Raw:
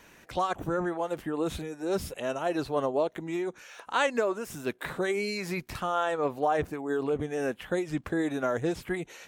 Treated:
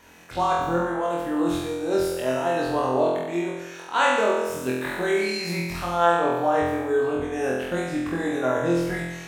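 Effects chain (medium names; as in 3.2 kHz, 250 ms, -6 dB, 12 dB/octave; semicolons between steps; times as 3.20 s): peaking EQ 890 Hz +2.5 dB 0.69 oct; flutter echo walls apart 4 m, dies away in 1.1 s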